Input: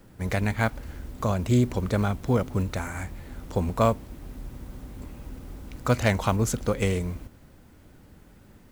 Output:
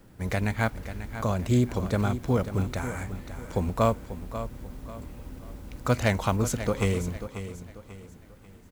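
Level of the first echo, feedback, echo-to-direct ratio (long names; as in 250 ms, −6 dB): −11.5 dB, 36%, −11.0 dB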